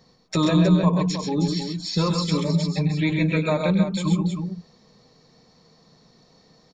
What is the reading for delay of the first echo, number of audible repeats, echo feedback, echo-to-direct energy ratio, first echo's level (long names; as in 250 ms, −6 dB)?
99 ms, 3, repeats not evenly spaced, −2.5 dB, −10.5 dB